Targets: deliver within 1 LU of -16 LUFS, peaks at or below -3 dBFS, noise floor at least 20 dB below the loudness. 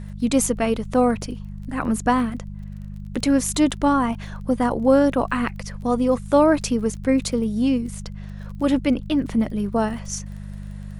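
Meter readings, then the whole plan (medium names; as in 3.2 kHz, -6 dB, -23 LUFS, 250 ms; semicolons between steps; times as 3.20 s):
tick rate 24 per s; hum 50 Hz; highest harmonic 200 Hz; hum level -32 dBFS; loudness -21.5 LUFS; peak level -4.5 dBFS; loudness target -16.0 LUFS
-> de-click; de-hum 50 Hz, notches 4; trim +5.5 dB; peak limiter -3 dBFS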